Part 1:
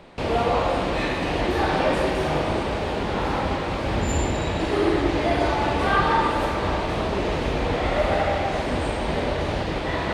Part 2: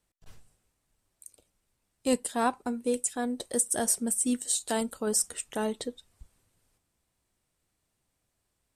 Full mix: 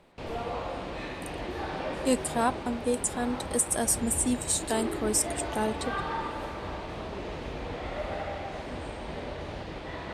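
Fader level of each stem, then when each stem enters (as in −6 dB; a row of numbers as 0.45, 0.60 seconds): −12.5, +0.5 decibels; 0.00, 0.00 seconds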